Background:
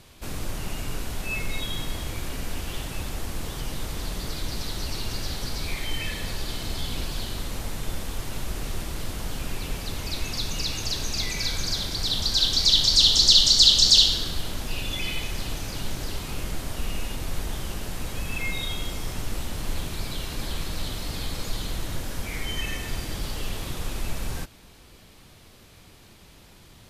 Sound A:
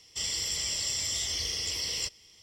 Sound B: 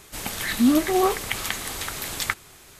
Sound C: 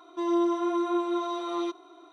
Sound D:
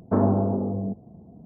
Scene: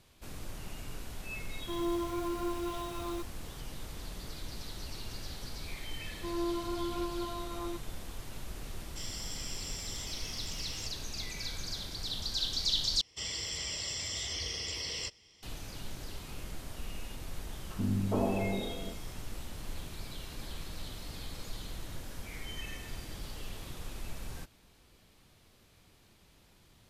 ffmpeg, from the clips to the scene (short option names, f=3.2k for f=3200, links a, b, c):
-filter_complex "[3:a]asplit=2[a][b];[1:a]asplit=2[c][d];[0:a]volume=-11.5dB[e];[a]acrusher=bits=8:dc=4:mix=0:aa=0.000001[f];[d]aemphasis=mode=reproduction:type=50kf[g];[4:a]acrossover=split=260|1500[h][i][j];[h]adelay=90[k];[i]adelay=420[l];[k][l][j]amix=inputs=3:normalize=0[m];[e]asplit=2[n][o];[n]atrim=end=13.014[p];[g]atrim=end=2.42,asetpts=PTS-STARTPTS,volume=-0.5dB[q];[o]atrim=start=15.426[r];[f]atrim=end=2.12,asetpts=PTS-STARTPTS,volume=-8.5dB,afade=t=in:d=0.004:c=hsin,afade=t=out:st=2.116:d=0.004:c=hsin,adelay=1510[s];[b]atrim=end=2.12,asetpts=PTS-STARTPTS,volume=-9.5dB,afade=t=in:d=0.004:c=hsin,afade=t=out:st=2.116:d=0.004:c=hsin,adelay=6060[t];[c]atrim=end=2.42,asetpts=PTS-STARTPTS,volume=-11dB,afade=t=in:d=0.004:c=hsin,afade=t=out:st=2.416:d=0.004:c=hsin,adelay=8800[u];[m]atrim=end=1.45,asetpts=PTS-STARTPTS,volume=-7dB,afade=t=in:d=0.004:c=hsin,afade=t=out:st=1.446:d=0.004:c=hsin,adelay=17580[v];[p][q]acrossfade=d=0.004:c1=hsin:c2=hsin[w];[w][r]acrossfade=d=0.004:c1=hsin:c2=hsin[x];[x][s][t][u][v]amix=inputs=5:normalize=0"